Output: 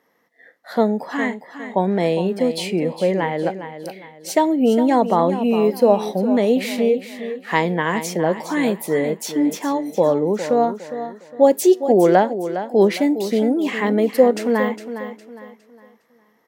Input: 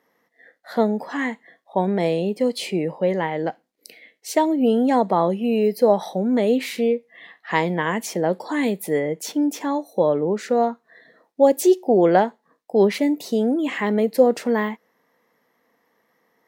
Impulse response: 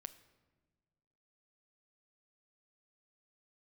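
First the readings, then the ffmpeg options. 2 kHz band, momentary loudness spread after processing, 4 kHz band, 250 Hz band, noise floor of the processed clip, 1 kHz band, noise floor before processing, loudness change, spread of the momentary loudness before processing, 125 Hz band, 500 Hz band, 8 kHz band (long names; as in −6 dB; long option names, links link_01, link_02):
+2.5 dB, 14 LU, +2.5 dB, +2.5 dB, −58 dBFS, +2.5 dB, −68 dBFS, +2.0 dB, 9 LU, +2.5 dB, +2.5 dB, +2.5 dB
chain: -af "aecho=1:1:409|818|1227|1636:0.282|0.0958|0.0326|0.0111,volume=2dB"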